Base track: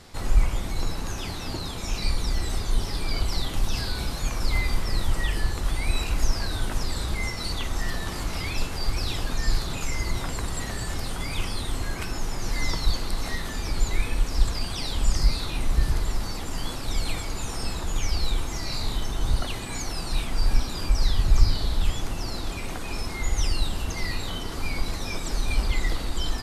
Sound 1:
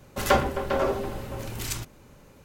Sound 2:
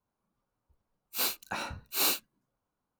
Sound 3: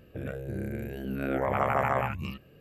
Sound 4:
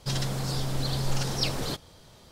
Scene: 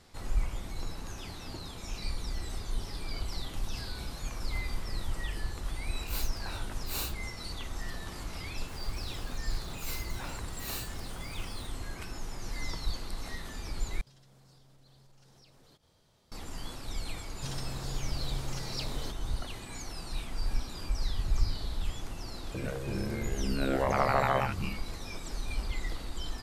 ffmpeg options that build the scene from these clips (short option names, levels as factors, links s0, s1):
-filter_complex "[2:a]asplit=2[s0][s1];[4:a]asplit=2[s2][s3];[0:a]volume=0.316[s4];[s0]acontrast=82[s5];[s1]aeval=exprs='val(0)+0.5*0.0237*sgn(val(0))':c=same[s6];[s2]acompressor=threshold=0.00708:ratio=6:attack=3.2:release=140:knee=1:detection=peak[s7];[s3]acontrast=71[s8];[s4]asplit=2[s9][s10];[s9]atrim=end=14.014[s11];[s7]atrim=end=2.31,asetpts=PTS-STARTPTS,volume=0.188[s12];[s10]atrim=start=16.316[s13];[s5]atrim=end=2.99,asetpts=PTS-STARTPTS,volume=0.158,afade=t=in:d=0.004:c=hsin,afade=t=out:st=2.986:d=0.004:c=hsin,adelay=4940[s14];[s6]atrim=end=2.99,asetpts=PTS-STARTPTS,volume=0.211,afade=t=in:d=0.004:c=hsin,afade=t=out:st=2.986:d=0.004:c=hsin,adelay=8680[s15];[s8]atrim=end=2.31,asetpts=PTS-STARTPTS,volume=0.141,afade=t=in:d=0.004:c=hsin,afade=t=out:st=2.306:d=0.004:c=hsin,adelay=17360[s16];[3:a]atrim=end=2.6,asetpts=PTS-STARTPTS,volume=0.944,afade=t=in:d=0.004:c=hsin,afade=t=out:st=2.596:d=0.004:c=hsin,adelay=22390[s17];[s11][s12]acrossfade=d=0.004:c1=hsin:c2=hsin[s18];[s18][s13]acrossfade=d=0.004:c1=hsin:c2=hsin[s19];[s19][s14][s15][s16][s17]amix=inputs=5:normalize=0"